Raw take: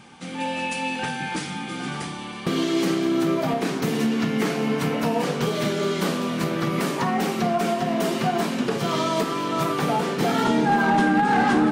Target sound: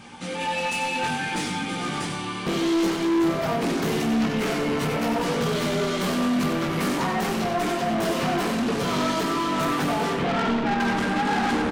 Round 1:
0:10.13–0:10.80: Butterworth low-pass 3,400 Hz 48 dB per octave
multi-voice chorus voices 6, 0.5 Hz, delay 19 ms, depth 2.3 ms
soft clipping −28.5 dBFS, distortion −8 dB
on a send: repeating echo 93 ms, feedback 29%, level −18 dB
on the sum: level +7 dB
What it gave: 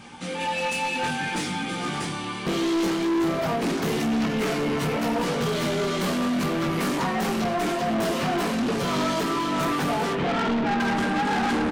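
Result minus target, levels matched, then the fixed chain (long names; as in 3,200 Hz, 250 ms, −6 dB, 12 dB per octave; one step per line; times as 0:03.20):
echo-to-direct −10.5 dB
0:10.13–0:10.80: Butterworth low-pass 3,400 Hz 48 dB per octave
multi-voice chorus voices 6, 0.5 Hz, delay 19 ms, depth 2.3 ms
soft clipping −28.5 dBFS, distortion −8 dB
on a send: repeating echo 93 ms, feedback 29%, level −7.5 dB
on the sum: level +7 dB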